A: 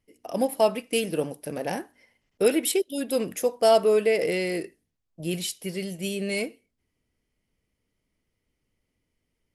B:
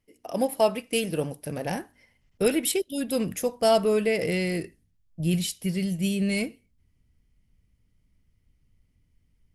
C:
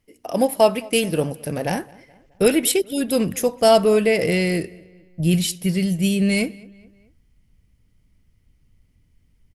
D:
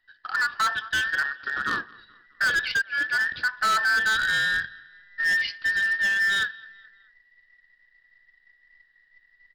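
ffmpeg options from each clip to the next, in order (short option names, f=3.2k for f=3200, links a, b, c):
-af "asubboost=boost=6:cutoff=170"
-filter_complex "[0:a]asplit=2[a][b];[b]adelay=213,lowpass=f=3.3k:p=1,volume=-23.5dB,asplit=2[c][d];[d]adelay=213,lowpass=f=3.3k:p=1,volume=0.51,asplit=2[e][f];[f]adelay=213,lowpass=f=3.3k:p=1,volume=0.51[g];[a][c][e][g]amix=inputs=4:normalize=0,volume=6.5dB"
-af "afftfilt=real='real(if(between(b,1,1012),(2*floor((b-1)/92)+1)*92-b,b),0)':imag='imag(if(between(b,1,1012),(2*floor((b-1)/92)+1)*92-b,b),0)*if(between(b,1,1012),-1,1)':win_size=2048:overlap=0.75,aresample=11025,acrusher=bits=5:mode=log:mix=0:aa=0.000001,aresample=44100,asoftclip=type=hard:threshold=-16.5dB,volume=-3dB"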